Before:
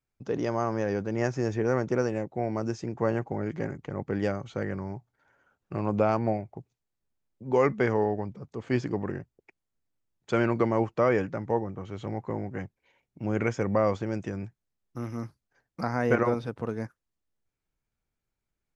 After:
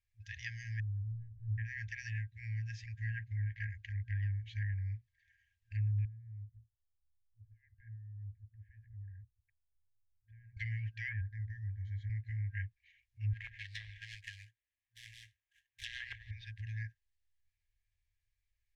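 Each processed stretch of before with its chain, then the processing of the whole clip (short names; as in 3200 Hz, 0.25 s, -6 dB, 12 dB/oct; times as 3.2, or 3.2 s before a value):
0.8–1.58 steep low-pass 650 Hz + Doppler distortion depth 0.29 ms
6.05–10.57 compressor 2.5:1, threshold -40 dBFS + LPF 1000 Hz 24 dB/oct
11.21–12.1 tone controls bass +3 dB, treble -6 dB + fixed phaser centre 730 Hz, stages 6
13.33–16.31 HPF 910 Hz 6 dB/oct + sample-rate reducer 4700 Hz, jitter 20%
whole clip: FFT band-reject 110–1600 Hz; treble ducked by the level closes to 730 Hz, closed at -33 dBFS; high shelf 5100 Hz -12 dB; gain +3 dB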